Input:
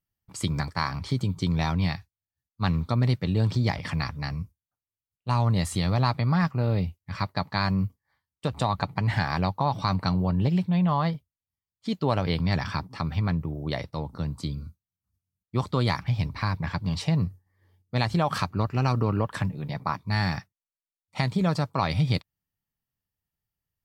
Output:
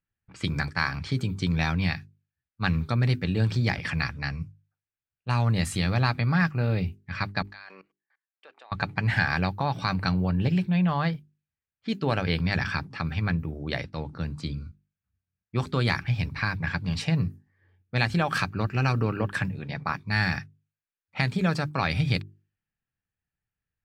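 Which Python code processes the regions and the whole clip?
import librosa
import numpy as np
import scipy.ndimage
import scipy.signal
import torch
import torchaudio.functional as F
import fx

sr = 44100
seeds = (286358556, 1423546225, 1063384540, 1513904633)

y = fx.chain(x, sr, fx.highpass(hz=390.0, slope=24),
    fx.tilt_eq(slope=1.5),
    fx.level_steps(step_db=24), at=(7.42, 8.72))
y = fx.hum_notches(y, sr, base_hz=50, count=8)
y = fx.env_lowpass(y, sr, base_hz=2200.0, full_db=-25.0)
y = fx.graphic_eq_31(y, sr, hz=(630, 1000, 1600, 2500), db=(-3, -6, 9, 7))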